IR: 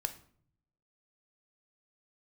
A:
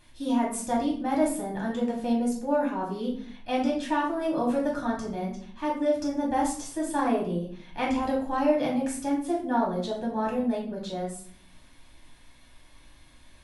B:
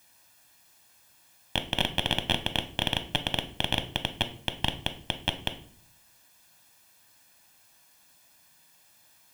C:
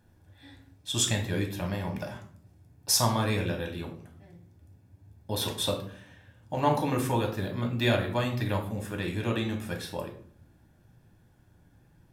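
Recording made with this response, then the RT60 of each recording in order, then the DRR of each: B; 0.55, 0.55, 0.55 s; -4.0, 8.0, 2.0 dB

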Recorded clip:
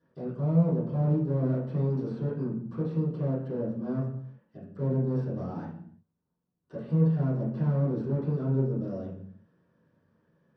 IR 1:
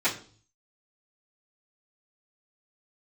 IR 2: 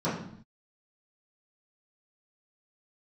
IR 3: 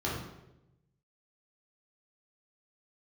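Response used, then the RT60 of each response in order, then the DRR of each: 2; 0.45 s, not exponential, 0.90 s; -16.5, -12.5, -6.0 dB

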